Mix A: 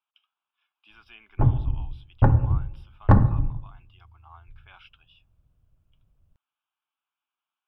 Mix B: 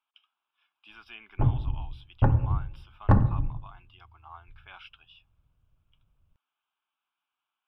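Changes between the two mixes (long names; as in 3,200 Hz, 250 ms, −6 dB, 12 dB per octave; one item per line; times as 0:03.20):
speech +3.5 dB
background −4.0 dB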